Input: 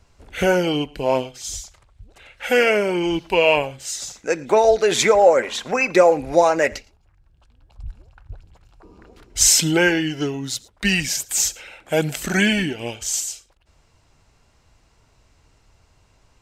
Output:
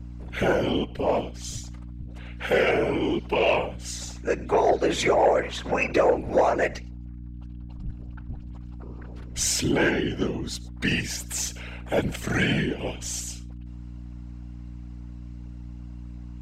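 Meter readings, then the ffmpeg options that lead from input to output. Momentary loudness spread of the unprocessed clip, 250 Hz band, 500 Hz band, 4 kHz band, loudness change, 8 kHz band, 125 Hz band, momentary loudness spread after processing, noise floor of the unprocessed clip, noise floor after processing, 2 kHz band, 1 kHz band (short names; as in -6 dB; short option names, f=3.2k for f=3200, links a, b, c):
15 LU, -4.0 dB, -5.5 dB, -7.5 dB, -6.0 dB, -10.5 dB, -0.5 dB, 19 LU, -60 dBFS, -39 dBFS, -6.0 dB, -4.5 dB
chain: -filter_complex "[0:a]highshelf=f=4.4k:g=-10.5,asplit=2[a][b];[b]acompressor=threshold=-33dB:ratio=5,volume=0.5dB[c];[a][c]amix=inputs=2:normalize=0,afftfilt=real='hypot(re,im)*cos(2*PI*random(0))':imag='hypot(re,im)*sin(2*PI*random(1))':win_size=512:overlap=0.75,aeval=exprs='val(0)+0.0126*(sin(2*PI*60*n/s)+sin(2*PI*2*60*n/s)/2+sin(2*PI*3*60*n/s)/3+sin(2*PI*4*60*n/s)/4+sin(2*PI*5*60*n/s)/5)':c=same,asoftclip=type=tanh:threshold=-12dB,volume=1dB"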